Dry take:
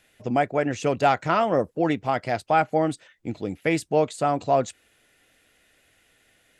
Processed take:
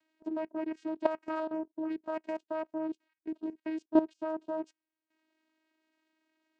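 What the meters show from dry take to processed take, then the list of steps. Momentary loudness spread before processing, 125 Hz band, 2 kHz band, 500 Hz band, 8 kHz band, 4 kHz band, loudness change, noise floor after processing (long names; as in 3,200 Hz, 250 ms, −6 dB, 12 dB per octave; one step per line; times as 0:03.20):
8 LU, below −30 dB, −17.5 dB, −11.5 dB, below −25 dB, below −20 dB, −11.0 dB, below −85 dBFS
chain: transient designer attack +4 dB, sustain −9 dB
channel vocoder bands 8, saw 316 Hz
output level in coarse steps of 15 dB
level −3.5 dB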